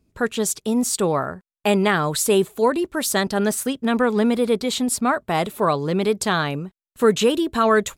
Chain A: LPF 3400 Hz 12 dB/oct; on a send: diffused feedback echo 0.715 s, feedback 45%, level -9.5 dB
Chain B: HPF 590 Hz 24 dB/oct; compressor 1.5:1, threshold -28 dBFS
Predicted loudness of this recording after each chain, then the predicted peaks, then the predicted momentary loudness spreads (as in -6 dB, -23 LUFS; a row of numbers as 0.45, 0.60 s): -21.0, -28.0 LUFS; -5.5, -12.0 dBFS; 6, 5 LU